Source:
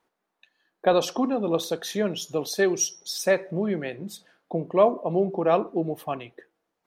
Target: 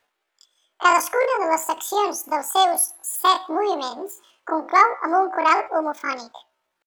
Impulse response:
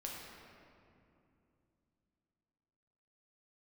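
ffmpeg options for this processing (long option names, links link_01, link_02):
-af "asetrate=85689,aresample=44100,atempo=0.514651,volume=4.5dB"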